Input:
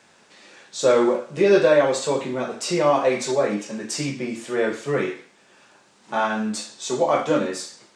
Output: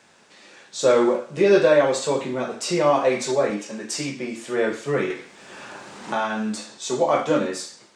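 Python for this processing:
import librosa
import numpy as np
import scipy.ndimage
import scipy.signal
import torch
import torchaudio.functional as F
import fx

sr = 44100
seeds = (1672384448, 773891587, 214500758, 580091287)

y = fx.highpass(x, sr, hz=210.0, slope=6, at=(3.5, 4.47))
y = fx.band_squash(y, sr, depth_pct=70, at=(5.1, 6.78))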